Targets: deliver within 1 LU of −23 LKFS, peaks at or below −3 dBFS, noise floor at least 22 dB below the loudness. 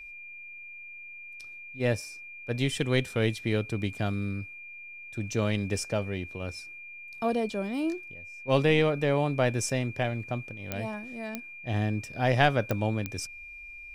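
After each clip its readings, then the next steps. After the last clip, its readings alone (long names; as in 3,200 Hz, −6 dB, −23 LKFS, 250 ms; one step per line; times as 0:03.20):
number of clicks 4; interfering tone 2,400 Hz; level of the tone −42 dBFS; integrated loudness −29.5 LKFS; sample peak −8.0 dBFS; target loudness −23.0 LKFS
→ click removal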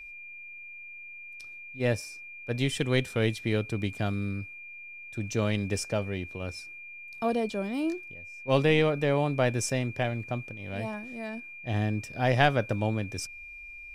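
number of clicks 0; interfering tone 2,400 Hz; level of the tone −42 dBFS
→ notch filter 2,400 Hz, Q 30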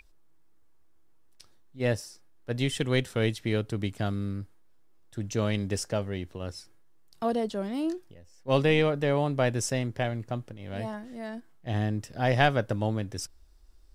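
interfering tone none found; integrated loudness −29.5 LKFS; sample peak −8.0 dBFS; target loudness −23.0 LKFS
→ level +6.5 dB
brickwall limiter −3 dBFS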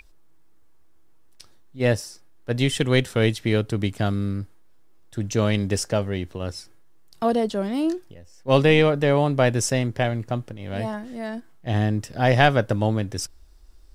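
integrated loudness −23.0 LKFS; sample peak −3.0 dBFS; background noise floor −49 dBFS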